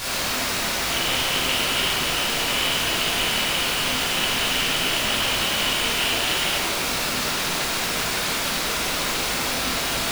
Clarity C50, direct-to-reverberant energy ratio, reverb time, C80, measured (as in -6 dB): -1.5 dB, -8.5 dB, 1.7 s, 0.5 dB